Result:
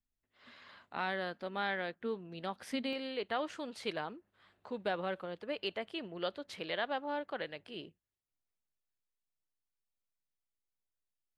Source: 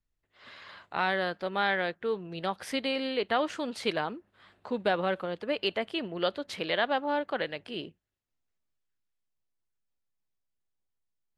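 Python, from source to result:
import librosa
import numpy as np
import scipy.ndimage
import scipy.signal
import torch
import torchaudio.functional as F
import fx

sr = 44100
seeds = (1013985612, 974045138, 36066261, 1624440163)

y = fx.peak_eq(x, sr, hz=240.0, db=fx.steps((0.0, 12.5), (2.93, -2.0)), octaves=0.22)
y = y * librosa.db_to_amplitude(-8.0)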